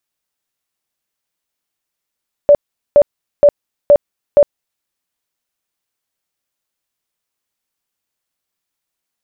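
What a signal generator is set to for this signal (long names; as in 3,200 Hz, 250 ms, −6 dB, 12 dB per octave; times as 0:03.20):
tone bursts 580 Hz, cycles 34, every 0.47 s, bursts 5, −3 dBFS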